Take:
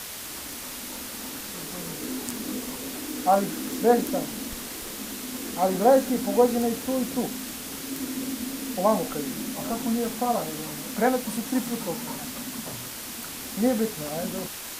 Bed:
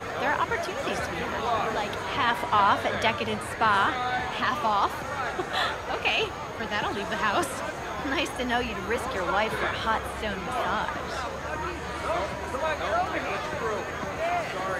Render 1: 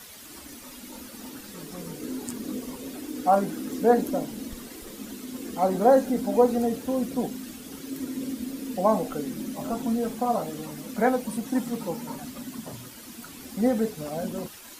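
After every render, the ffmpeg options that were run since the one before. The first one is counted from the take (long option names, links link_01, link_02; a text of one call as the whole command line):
ffmpeg -i in.wav -af "afftdn=noise_reduction=11:noise_floor=-37" out.wav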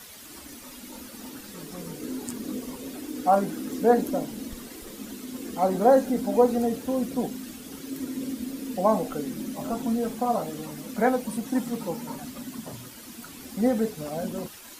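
ffmpeg -i in.wav -af anull out.wav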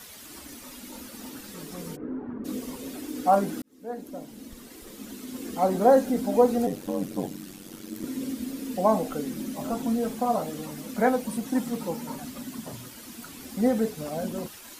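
ffmpeg -i in.wav -filter_complex "[0:a]asplit=3[link_01][link_02][link_03];[link_01]afade=type=out:start_time=1.95:duration=0.02[link_04];[link_02]lowpass=frequency=1500:width=0.5412,lowpass=frequency=1500:width=1.3066,afade=type=in:start_time=1.95:duration=0.02,afade=type=out:start_time=2.44:duration=0.02[link_05];[link_03]afade=type=in:start_time=2.44:duration=0.02[link_06];[link_04][link_05][link_06]amix=inputs=3:normalize=0,asettb=1/sr,asplit=3[link_07][link_08][link_09];[link_07]atrim=end=6.664[link_10];[link_08]atrim=start=6.66:end=8.04,asetpts=PTS-STARTPTS,afade=type=in:duration=0.004:curve=qsin,afade=type=out:start_time=1.376:duration=0.004:curve=qsin,aeval=exprs='val(0)*sin(2*PI*47*n/s)':channel_layout=same[link_11];[link_09]atrim=start=8.036[link_12];[link_10][link_11]acrossfade=duration=0.004:curve1=hsin:curve2=qsin[link_13];[link_13][link_12]acrossfade=duration=0.004:curve1=qsin:curve2=hsin,asplit=2[link_14][link_15];[link_14]atrim=end=3.62,asetpts=PTS-STARTPTS,afade=type=out:start_time=3.616:duration=0.004:curve=hsin[link_16];[link_15]atrim=start=3.62,asetpts=PTS-STARTPTS,afade=type=in:duration=1.85[link_17];[link_16][link_17]concat=n=2:v=0:a=1" out.wav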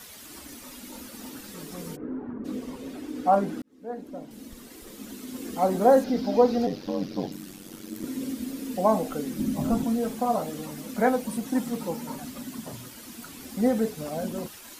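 ffmpeg -i in.wav -filter_complex "[0:a]asettb=1/sr,asplit=3[link_01][link_02][link_03];[link_01]atrim=end=2.314[link_04];[link_02]atrim=start=2.31:end=4.31,asetpts=PTS-STARTPTS,afade=type=in:duration=0.004:curve=qsin,afade=type=out:start_time=1.996:duration=0.004:curve=qsin,lowpass=frequency=2800:poles=1[link_05];[link_03]atrim=start=4.306[link_06];[link_04][link_05]acrossfade=duration=0.004:curve1=hsin:curve2=qsin[link_07];[link_07][link_06]acrossfade=duration=0.004:curve1=qsin:curve2=hsin,asettb=1/sr,asplit=3[link_08][link_09][link_10];[link_08]atrim=end=6.044[link_11];[link_09]atrim=start=6.04:end=7.32,asetpts=PTS-STARTPTS,afade=type=in:duration=0.004:curve=qsin,afade=type=out:start_time=1.276:duration=0.004:curve=qsin,highshelf=frequency=6500:width_type=q:width=3:gain=-10[link_12];[link_10]atrim=start=7.316[link_13];[link_11][link_12]acrossfade=duration=0.004:curve1=hsin:curve2=qsin[link_14];[link_14][link_13]acrossfade=duration=0.004:curve1=qsin:curve2=hsin,asettb=1/sr,asplit=3[link_15][link_16][link_17];[link_15]atrim=end=9.394[link_18];[link_16]atrim=start=9.39:end=9.84,asetpts=PTS-STARTPTS,afade=type=in:duration=0.004:curve=qsin,afade=type=out:start_time=0.446:duration=0.004:curve=qsin,bass=frequency=250:gain=13,treble=frequency=4000:gain=0[link_19];[link_17]atrim=start=9.836[link_20];[link_18][link_19]acrossfade=duration=0.004:curve1=hsin:curve2=qsin[link_21];[link_21][link_20]acrossfade=duration=0.004:curve1=qsin:curve2=hsin" out.wav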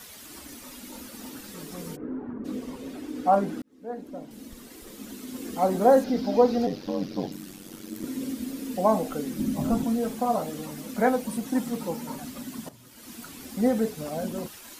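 ffmpeg -i in.wav -filter_complex "[0:a]asplit=2[link_01][link_02];[link_01]atrim=end=12.69,asetpts=PTS-STARTPTS,afade=type=out:start_time=12.686:duration=0.004:curve=hsin:silence=0.223872[link_03];[link_02]atrim=start=12.69,asetpts=PTS-STARTPTS,afade=type=in:duration=0.42:curve=qua:silence=0.223872[link_04];[link_03][link_04]concat=n=2:v=0:a=1" out.wav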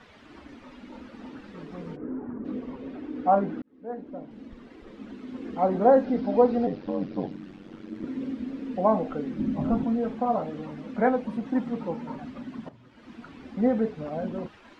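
ffmpeg -i in.wav -af "lowpass=2700,aemphasis=mode=reproduction:type=50kf" out.wav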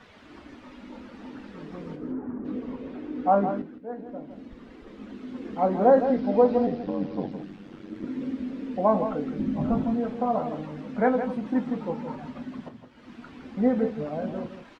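ffmpeg -i in.wav -filter_complex "[0:a]asplit=2[link_01][link_02];[link_02]adelay=20,volume=-11.5dB[link_03];[link_01][link_03]amix=inputs=2:normalize=0,aecho=1:1:163:0.335" out.wav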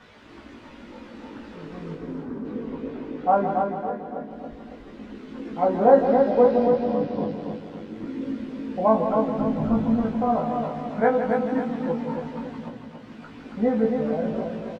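ffmpeg -i in.wav -filter_complex "[0:a]asplit=2[link_01][link_02];[link_02]adelay=18,volume=-3dB[link_03];[link_01][link_03]amix=inputs=2:normalize=0,aecho=1:1:277|554|831|1108|1385:0.562|0.242|0.104|0.0447|0.0192" out.wav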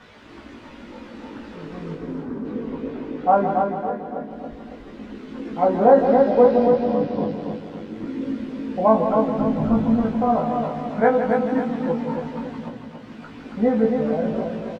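ffmpeg -i in.wav -af "volume=3dB,alimiter=limit=-3dB:level=0:latency=1" out.wav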